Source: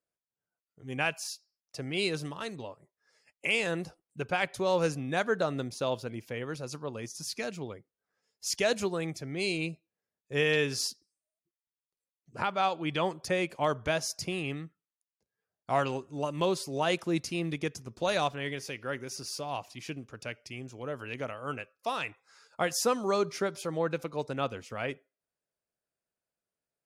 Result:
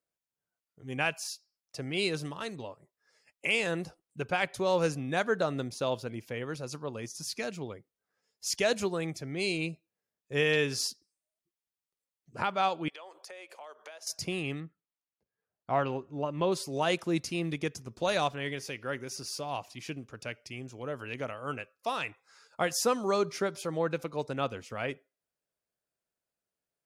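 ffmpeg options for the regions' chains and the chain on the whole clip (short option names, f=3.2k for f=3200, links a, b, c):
-filter_complex "[0:a]asettb=1/sr,asplit=3[a][b][c];[a]atrim=end=12.884[d];[b]atrim=start=12.88:end=14.07,asetpts=PTS-STARTPTS,afade=t=in:d=0.004:c=qsin,afade=t=out:st=1.186:d=0.004:c=qsin,highpass=f=460:w=0.5412,highpass=f=460:w=1.3066,acompressor=threshold=-44dB:ratio=8:attack=3.2:release=140:knee=1:detection=peak[e];[c]atrim=start=14.066[f];[d][e]acrossfade=d=0.004:c1=hsin:c2=qsin[g];[g][f]acrossfade=d=0.004:c1=qsin:c2=hsin,asettb=1/sr,asplit=3[h][i][j];[h]atrim=end=14.604[k];[i]atrim=start=14.6:end=16.52,asetpts=PTS-STARTPTS,afade=t=in:d=0.004:c=qsin,afade=t=out:st=1.916:d=0.004:c=qsin,lowpass=4.6k,highshelf=f=3k:g=-9[l];[j]atrim=start=16.516[m];[k][l]acrossfade=d=0.004:c1=hsin:c2=qsin[n];[n][m]acrossfade=d=0.004:c1=qsin:c2=hsin"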